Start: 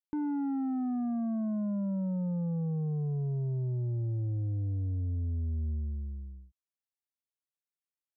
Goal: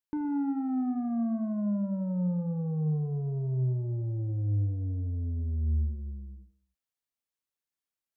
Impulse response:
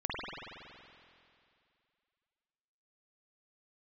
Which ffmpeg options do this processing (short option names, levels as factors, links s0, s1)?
-filter_complex "[0:a]asplit=2[s0][s1];[1:a]atrim=start_sample=2205,afade=t=out:st=0.34:d=0.01,atrim=end_sample=15435,asetrate=52920,aresample=44100[s2];[s1][s2]afir=irnorm=-1:irlink=0,volume=0.251[s3];[s0][s3]amix=inputs=2:normalize=0"